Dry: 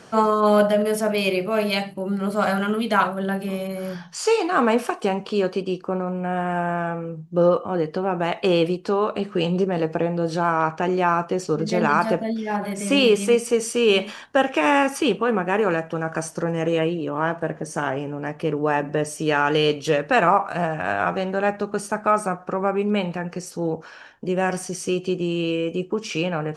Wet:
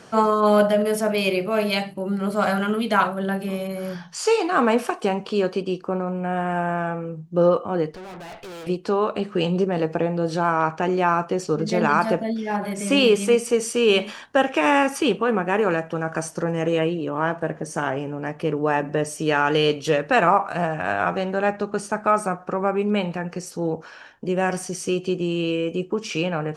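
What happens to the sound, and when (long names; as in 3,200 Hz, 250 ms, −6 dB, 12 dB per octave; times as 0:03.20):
0:07.92–0:08.67: tube saturation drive 36 dB, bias 0.8
0:21.48–0:22.00: low-pass filter 9,500 Hz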